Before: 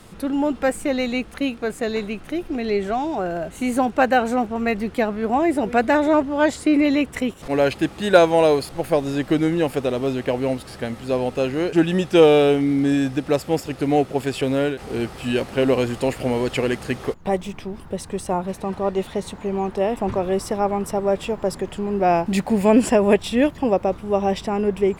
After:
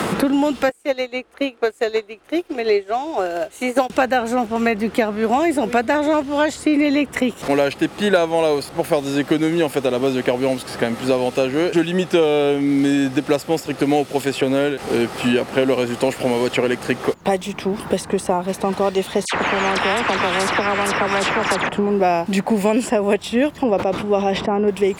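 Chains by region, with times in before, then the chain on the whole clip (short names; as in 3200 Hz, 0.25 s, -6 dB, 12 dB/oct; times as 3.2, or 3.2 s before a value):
0.69–3.9 resonant low shelf 270 Hz -11 dB, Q 1.5 + upward expander 2.5:1, over -33 dBFS
19.25–21.69 air absorption 67 m + dispersion lows, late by 82 ms, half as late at 1800 Hz + spectral compressor 4:1
23.63–24.68 LPF 1400 Hz 6 dB/oct + sustainer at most 57 dB/s
whole clip: HPF 210 Hz 6 dB/oct; three-band squash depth 100%; gain +2.5 dB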